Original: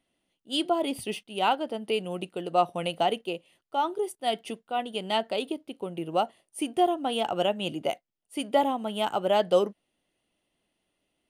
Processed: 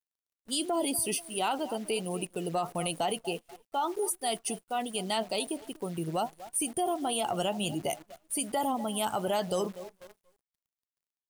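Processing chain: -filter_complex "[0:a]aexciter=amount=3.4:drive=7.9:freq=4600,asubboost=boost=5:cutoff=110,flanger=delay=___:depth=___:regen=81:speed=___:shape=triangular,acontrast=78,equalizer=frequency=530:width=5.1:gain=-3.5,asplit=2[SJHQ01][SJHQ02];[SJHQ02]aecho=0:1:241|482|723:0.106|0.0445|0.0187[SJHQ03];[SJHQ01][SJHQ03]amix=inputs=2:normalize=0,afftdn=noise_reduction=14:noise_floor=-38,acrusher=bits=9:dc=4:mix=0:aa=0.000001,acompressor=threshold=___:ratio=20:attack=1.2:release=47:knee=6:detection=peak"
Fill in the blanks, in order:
2.3, 3.8, 1.4, -24dB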